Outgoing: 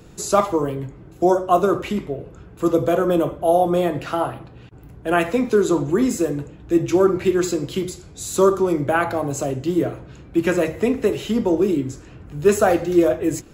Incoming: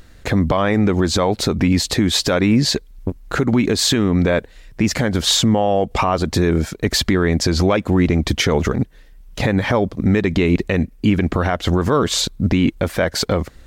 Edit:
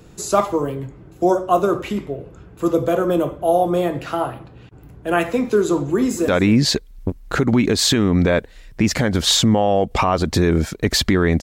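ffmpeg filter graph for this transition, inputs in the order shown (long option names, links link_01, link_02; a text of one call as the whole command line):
ffmpeg -i cue0.wav -i cue1.wav -filter_complex "[0:a]apad=whole_dur=11.42,atrim=end=11.42,atrim=end=6.282[link_01];[1:a]atrim=start=2.278:end=7.42[link_02];[link_01][link_02]acrossfade=duration=0.004:curve1=hsin:curve2=hsin,asplit=2[link_03][link_04];[link_04]afade=type=in:start_time=5.88:duration=0.01,afade=type=out:start_time=6.28:duration=0.01,aecho=0:1:240|480:0.149624|0.0224435[link_05];[link_03][link_05]amix=inputs=2:normalize=0" out.wav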